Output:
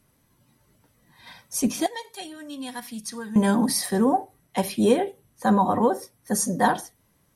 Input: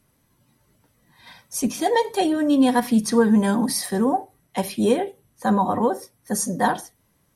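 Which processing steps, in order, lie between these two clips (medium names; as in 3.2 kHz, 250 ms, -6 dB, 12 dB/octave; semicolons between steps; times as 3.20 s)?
1.86–3.36 s: amplifier tone stack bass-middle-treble 5-5-5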